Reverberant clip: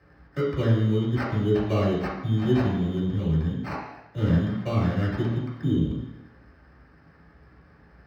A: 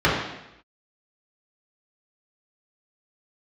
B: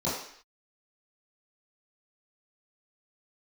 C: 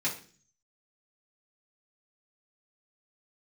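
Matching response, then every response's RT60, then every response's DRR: A; 0.85, 0.60, 0.40 seconds; −7.5, −11.5, −7.5 decibels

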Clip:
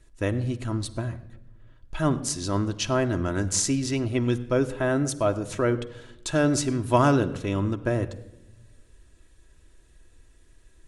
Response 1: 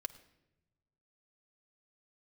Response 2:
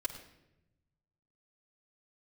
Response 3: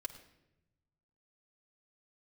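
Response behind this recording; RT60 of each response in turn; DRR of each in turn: 1; 0.95, 0.90, 0.90 seconds; 6.0, −4.5, 0.5 decibels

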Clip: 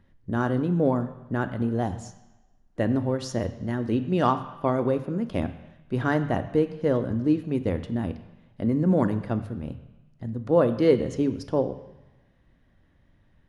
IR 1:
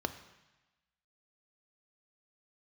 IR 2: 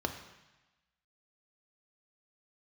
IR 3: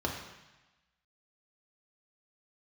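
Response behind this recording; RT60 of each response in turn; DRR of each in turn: 1; 1.1, 1.1, 1.1 seconds; 9.5, 5.5, −0.5 decibels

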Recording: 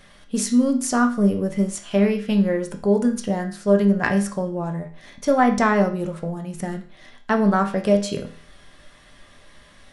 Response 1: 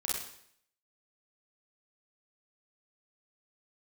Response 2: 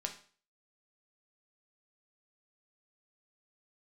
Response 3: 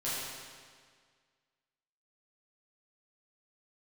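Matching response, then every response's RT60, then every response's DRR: 2; 0.65, 0.45, 1.8 seconds; −4.5, 3.0, −10.5 decibels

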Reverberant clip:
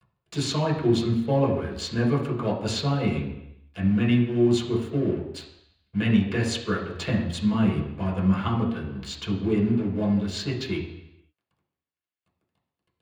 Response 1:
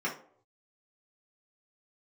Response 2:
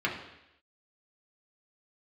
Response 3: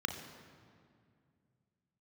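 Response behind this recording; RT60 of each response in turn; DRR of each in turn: 2; non-exponential decay, 0.85 s, 2.2 s; −5.0, −3.5, 4.5 decibels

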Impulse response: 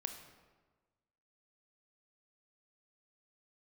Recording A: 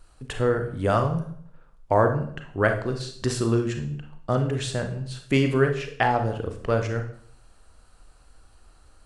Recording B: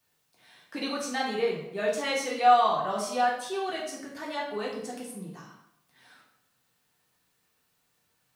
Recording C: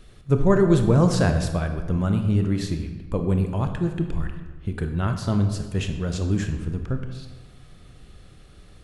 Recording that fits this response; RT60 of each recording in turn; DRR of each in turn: C; 0.60, 0.80, 1.3 seconds; 5.0, −4.5, 6.0 decibels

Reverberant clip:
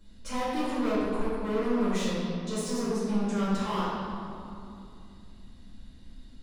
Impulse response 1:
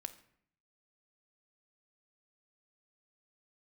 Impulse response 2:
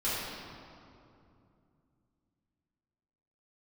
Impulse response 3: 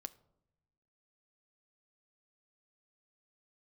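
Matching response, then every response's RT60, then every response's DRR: 2; 0.65 s, 2.7 s, non-exponential decay; 7.5, −12.0, 11.5 decibels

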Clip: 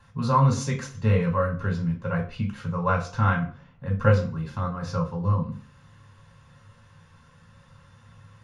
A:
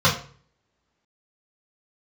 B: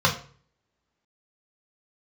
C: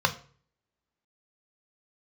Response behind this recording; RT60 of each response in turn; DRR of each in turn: B; 0.45, 0.45, 0.45 seconds; −7.0, −1.0, 6.5 decibels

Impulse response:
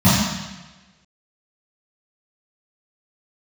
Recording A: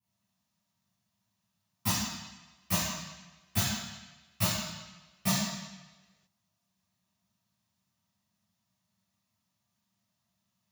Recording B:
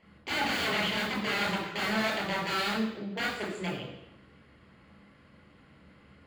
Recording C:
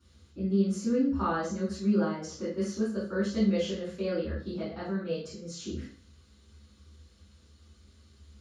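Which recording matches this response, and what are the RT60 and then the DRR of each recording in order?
A; 1.2, 0.85, 0.45 seconds; −15.5, −3.0, −11.5 decibels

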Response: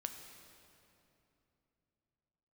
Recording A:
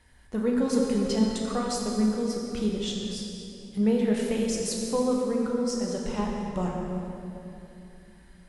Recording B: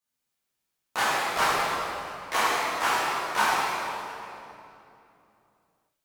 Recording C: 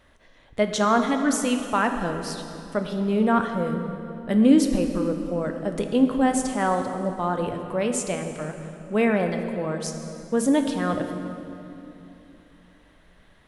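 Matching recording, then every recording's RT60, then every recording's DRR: C; 2.9, 2.9, 3.0 seconds; −2.0, −11.0, 5.0 decibels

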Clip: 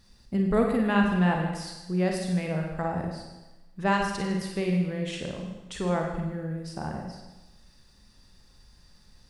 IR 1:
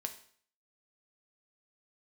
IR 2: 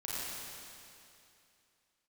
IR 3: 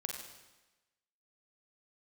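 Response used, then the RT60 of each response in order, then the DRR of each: 3; 0.55, 2.7, 1.1 seconds; 5.5, −9.0, 1.0 decibels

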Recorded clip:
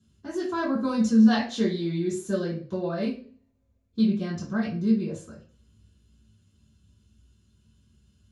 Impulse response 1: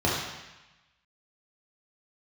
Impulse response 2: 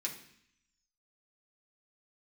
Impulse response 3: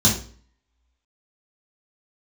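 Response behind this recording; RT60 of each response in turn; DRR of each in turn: 3; 1.0, 0.65, 0.45 seconds; −6.0, −2.5, −5.5 decibels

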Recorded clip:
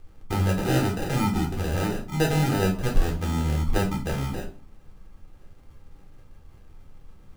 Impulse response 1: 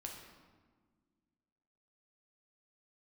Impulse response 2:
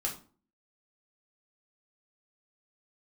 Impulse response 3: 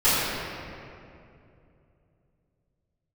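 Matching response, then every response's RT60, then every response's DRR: 2; 1.6, 0.40, 2.6 seconds; 0.0, −1.0, −17.0 decibels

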